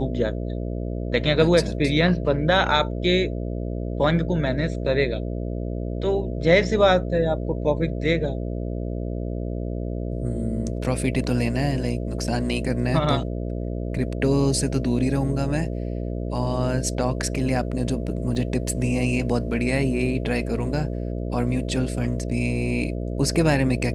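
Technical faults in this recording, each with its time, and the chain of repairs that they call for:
buzz 60 Hz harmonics 11 -28 dBFS
18.35 s: dropout 4.4 ms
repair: de-hum 60 Hz, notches 11; interpolate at 18.35 s, 4.4 ms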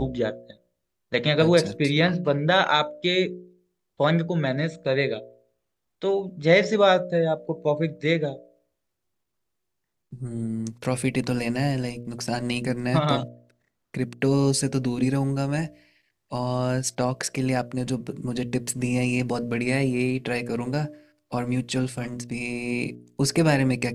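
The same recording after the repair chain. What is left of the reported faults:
nothing left

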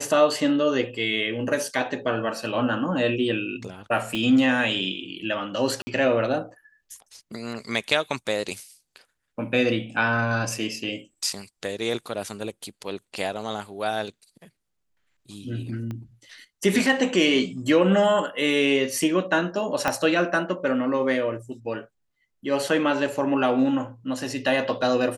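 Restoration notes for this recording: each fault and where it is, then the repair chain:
4.15 s: pop -15 dBFS
5.82–5.87 s: dropout 50 ms
15.91 s: pop -22 dBFS
19.88 s: pop -8 dBFS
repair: de-click; interpolate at 5.82 s, 50 ms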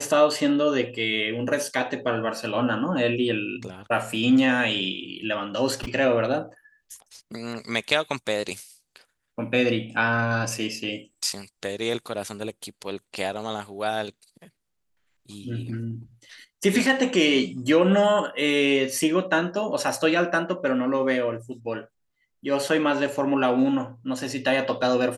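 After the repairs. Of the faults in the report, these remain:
4.15 s: pop
15.91 s: pop
19.88 s: pop

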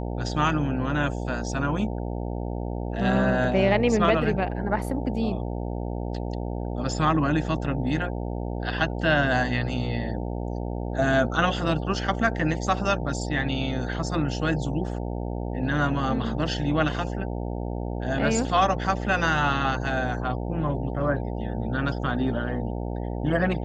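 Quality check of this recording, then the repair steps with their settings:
buzz 60 Hz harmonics 15 -30 dBFS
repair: de-hum 60 Hz, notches 15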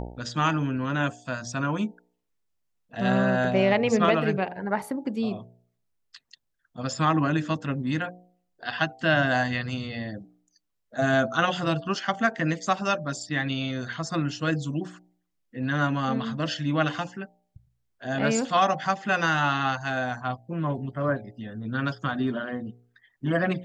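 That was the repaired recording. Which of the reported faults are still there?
nothing left

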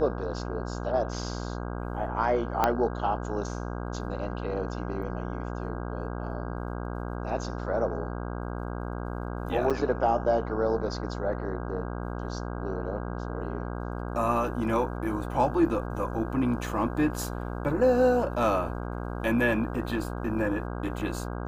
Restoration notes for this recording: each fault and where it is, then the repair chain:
buzz 60 Hz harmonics 27 -34 dBFS
2.64 s: pop -9 dBFS
9.70–9.71 s: dropout 6.6 ms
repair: de-click; de-hum 60 Hz, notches 27; interpolate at 9.70 s, 6.6 ms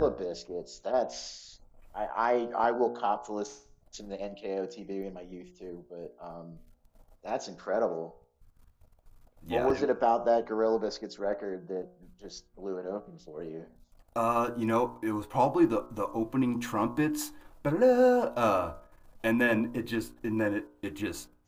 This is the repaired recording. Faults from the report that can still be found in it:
2.64 s: pop

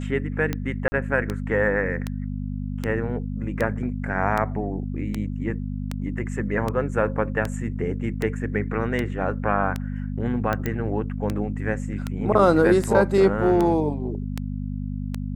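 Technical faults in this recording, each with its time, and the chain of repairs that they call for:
hum 50 Hz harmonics 5 -29 dBFS
tick 78 rpm -12 dBFS
0.88–0.92 s: dropout 40 ms
10.66 s: pop -12 dBFS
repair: de-click; de-hum 50 Hz, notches 5; interpolate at 0.88 s, 40 ms

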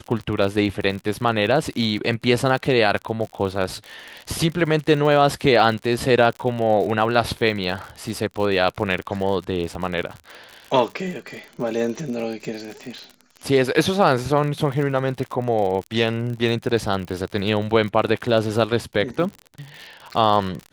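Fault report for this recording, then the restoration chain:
crackle 58 per s -28 dBFS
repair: de-click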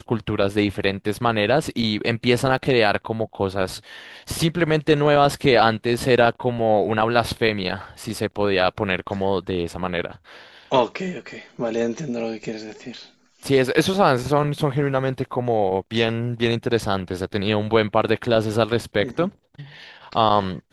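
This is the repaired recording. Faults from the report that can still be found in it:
nothing left

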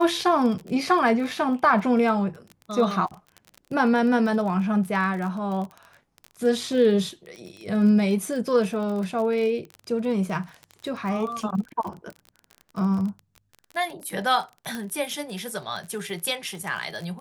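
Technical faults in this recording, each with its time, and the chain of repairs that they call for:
crackle 27 per s -31 dBFS
14.75 s: pop -17 dBFS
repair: de-click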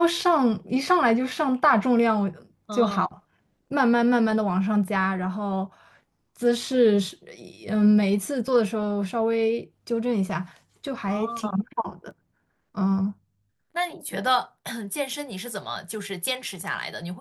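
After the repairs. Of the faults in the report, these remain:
nothing left

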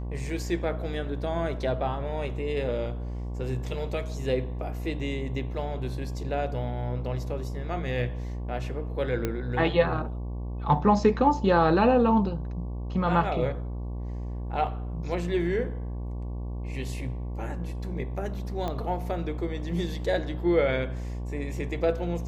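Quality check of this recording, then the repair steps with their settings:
buzz 60 Hz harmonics 19 -33 dBFS
9.25 s: pop -14 dBFS
18.68 s: pop -19 dBFS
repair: de-click; de-hum 60 Hz, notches 19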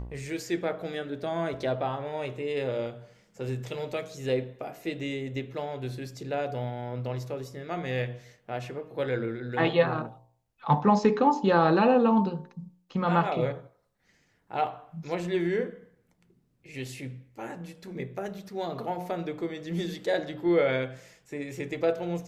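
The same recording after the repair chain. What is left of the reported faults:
nothing left

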